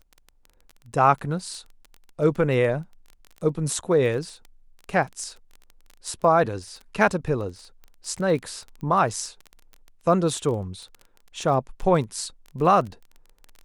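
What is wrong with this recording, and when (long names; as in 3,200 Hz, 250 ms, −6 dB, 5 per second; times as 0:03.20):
surface crackle 17 per second −32 dBFS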